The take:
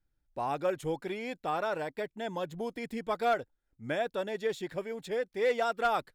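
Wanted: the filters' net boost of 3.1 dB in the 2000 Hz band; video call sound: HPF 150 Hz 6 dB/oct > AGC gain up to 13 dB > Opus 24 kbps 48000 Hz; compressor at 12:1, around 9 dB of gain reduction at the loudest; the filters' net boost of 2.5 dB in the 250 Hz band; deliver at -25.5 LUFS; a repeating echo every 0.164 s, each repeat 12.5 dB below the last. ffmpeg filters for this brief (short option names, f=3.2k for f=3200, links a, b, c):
-af "equalizer=f=250:t=o:g=5,equalizer=f=2k:t=o:g=4,acompressor=threshold=-31dB:ratio=12,highpass=f=150:p=1,aecho=1:1:164|328|492:0.237|0.0569|0.0137,dynaudnorm=m=13dB,volume=12dB" -ar 48000 -c:a libopus -b:a 24k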